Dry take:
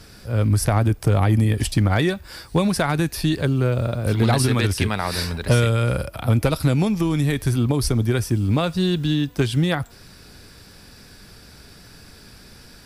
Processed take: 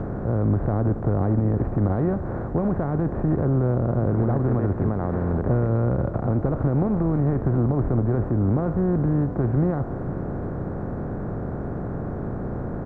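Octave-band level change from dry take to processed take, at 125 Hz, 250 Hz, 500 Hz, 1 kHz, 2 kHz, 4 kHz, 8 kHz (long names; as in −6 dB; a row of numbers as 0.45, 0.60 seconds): −2.0 dB, −1.0 dB, −1.0 dB, −4.0 dB, −13.5 dB, below −35 dB, below −40 dB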